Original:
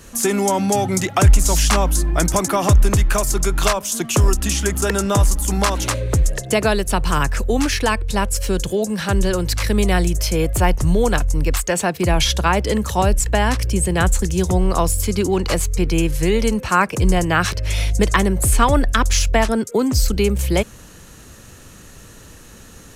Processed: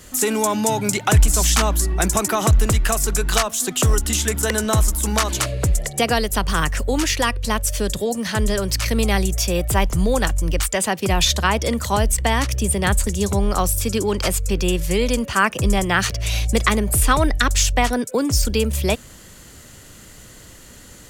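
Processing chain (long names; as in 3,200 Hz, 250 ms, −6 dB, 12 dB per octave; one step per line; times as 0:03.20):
high-shelf EQ 8,000 Hz −7.5 dB
wrong playback speed 44.1 kHz file played as 48 kHz
high-shelf EQ 3,000 Hz +8 dB
level −2.5 dB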